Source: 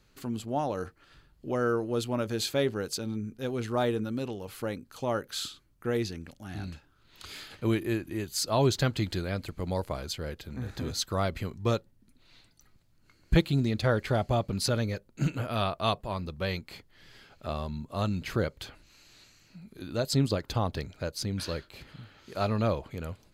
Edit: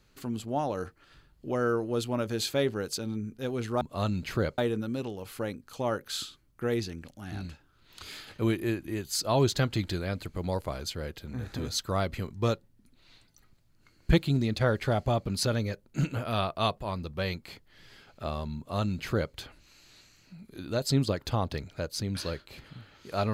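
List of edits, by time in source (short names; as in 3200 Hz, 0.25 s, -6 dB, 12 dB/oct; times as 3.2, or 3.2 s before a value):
17.8–18.57 copy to 3.81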